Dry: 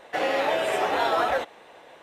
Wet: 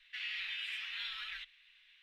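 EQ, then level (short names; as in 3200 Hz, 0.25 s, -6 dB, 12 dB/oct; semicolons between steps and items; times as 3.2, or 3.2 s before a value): inverse Chebyshev band-stop 110–670 Hz, stop band 70 dB; air absorption 380 m; high shelf 4900 Hz +6 dB; +2.0 dB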